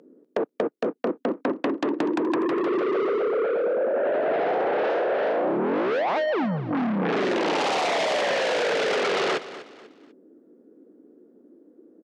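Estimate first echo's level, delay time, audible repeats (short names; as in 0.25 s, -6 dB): -15.0 dB, 0.246 s, 3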